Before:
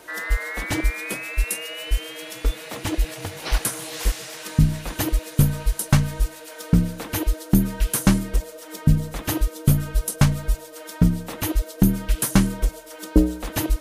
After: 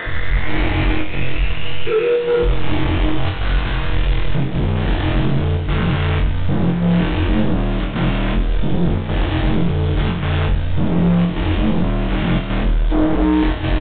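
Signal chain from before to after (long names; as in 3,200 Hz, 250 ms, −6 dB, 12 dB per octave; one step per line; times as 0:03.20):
every bin's largest magnitude spread in time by 480 ms
0:01.86–0:02.43: frequency shifter −480 Hz
gain into a clipping stage and back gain 14 dB
square-wave tremolo 0.88 Hz, depth 65%, duty 90%
soft clipping −16 dBFS, distortion −20 dB
bit reduction 5 bits
on a send: flutter between parallel walls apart 3.9 metres, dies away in 0.3 s
on the sum: downsampling to 8,000 Hz
level +1 dB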